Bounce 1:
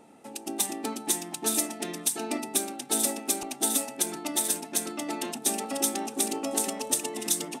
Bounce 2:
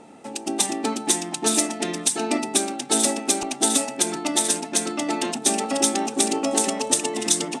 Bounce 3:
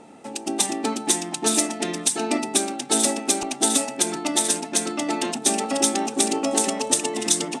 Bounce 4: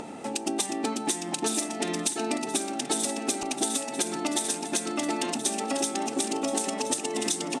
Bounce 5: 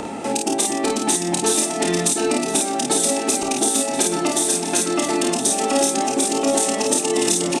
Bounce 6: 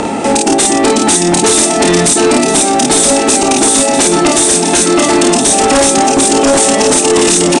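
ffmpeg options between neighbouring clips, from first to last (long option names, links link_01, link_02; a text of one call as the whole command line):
ffmpeg -i in.wav -af "lowpass=frequency=9000:width=0.5412,lowpass=frequency=9000:width=1.3066,volume=8dB" out.wav
ffmpeg -i in.wav -af anull out.wav
ffmpeg -i in.wav -af "acompressor=threshold=-28dB:ratio=6,aecho=1:1:1026|2052|3078:0.224|0.0694|0.0215,acompressor=mode=upward:threshold=-36dB:ratio=2.5,volume=2.5dB" out.wav
ffmpeg -i in.wav -filter_complex "[0:a]acrossover=split=350|740|5900[link_01][link_02][link_03][link_04];[link_01]asoftclip=type=tanh:threshold=-32dB[link_05];[link_03]alimiter=level_in=2dB:limit=-24dB:level=0:latency=1:release=247,volume=-2dB[link_06];[link_05][link_02][link_06][link_04]amix=inputs=4:normalize=0,aecho=1:1:29|52:0.562|0.631,volume=8.5dB" out.wav
ffmpeg -i in.wav -af "aeval=exprs='0.668*sin(PI/2*3.55*val(0)/0.668)':channel_layout=same,aresample=22050,aresample=44100,volume=-1dB" out.wav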